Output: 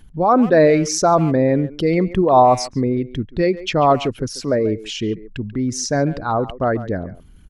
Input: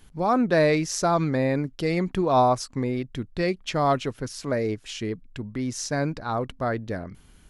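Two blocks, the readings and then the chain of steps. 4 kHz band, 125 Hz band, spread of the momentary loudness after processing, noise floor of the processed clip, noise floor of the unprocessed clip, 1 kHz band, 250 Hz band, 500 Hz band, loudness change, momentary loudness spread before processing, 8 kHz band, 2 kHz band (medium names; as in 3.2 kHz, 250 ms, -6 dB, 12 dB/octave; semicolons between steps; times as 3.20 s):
+6.5 dB, +6.0 dB, 12 LU, -44 dBFS, -54 dBFS, +7.5 dB, +7.5 dB, +8.0 dB, +7.5 dB, 12 LU, +7.5 dB, +3.5 dB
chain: resonances exaggerated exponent 1.5; speakerphone echo 140 ms, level -15 dB; trim +7.5 dB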